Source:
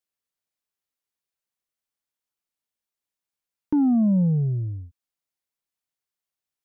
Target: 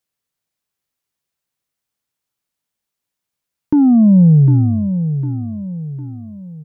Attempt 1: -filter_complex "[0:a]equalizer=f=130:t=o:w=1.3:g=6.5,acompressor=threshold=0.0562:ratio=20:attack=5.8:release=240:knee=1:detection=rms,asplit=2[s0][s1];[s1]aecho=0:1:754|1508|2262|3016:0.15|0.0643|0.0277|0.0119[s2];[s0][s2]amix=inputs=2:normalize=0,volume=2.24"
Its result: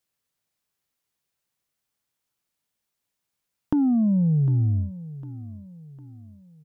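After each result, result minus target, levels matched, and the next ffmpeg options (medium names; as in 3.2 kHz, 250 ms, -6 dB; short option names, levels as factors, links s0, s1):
compression: peak gain reduction +12.5 dB; echo-to-direct -7 dB
-filter_complex "[0:a]equalizer=f=130:t=o:w=1.3:g=6.5,asplit=2[s0][s1];[s1]aecho=0:1:754|1508|2262|3016:0.15|0.0643|0.0277|0.0119[s2];[s0][s2]amix=inputs=2:normalize=0,volume=2.24"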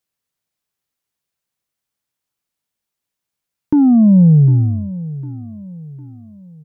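echo-to-direct -7 dB
-filter_complex "[0:a]equalizer=f=130:t=o:w=1.3:g=6.5,asplit=2[s0][s1];[s1]aecho=0:1:754|1508|2262|3016|3770:0.335|0.144|0.0619|0.0266|0.0115[s2];[s0][s2]amix=inputs=2:normalize=0,volume=2.24"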